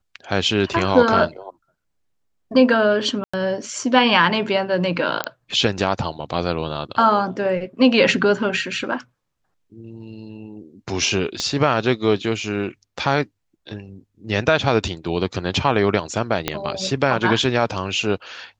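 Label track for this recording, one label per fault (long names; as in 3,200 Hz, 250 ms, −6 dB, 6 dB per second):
0.730000	0.730000	drop-out 3.7 ms
3.240000	3.330000	drop-out 95 ms
5.240000	5.240000	click −6 dBFS
11.400000	11.400000	click −10 dBFS
16.480000	16.480000	click −4 dBFS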